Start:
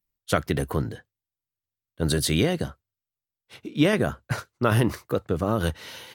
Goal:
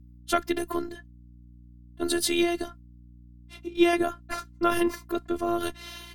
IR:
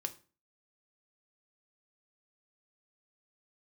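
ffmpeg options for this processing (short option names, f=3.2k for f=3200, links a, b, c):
-af "highpass=130,afftfilt=real='hypot(re,im)*cos(PI*b)':imag='0':win_size=512:overlap=0.75,aeval=exprs='val(0)+0.00282*(sin(2*PI*60*n/s)+sin(2*PI*2*60*n/s)/2+sin(2*PI*3*60*n/s)/3+sin(2*PI*4*60*n/s)/4+sin(2*PI*5*60*n/s)/5)':c=same,volume=2.5dB"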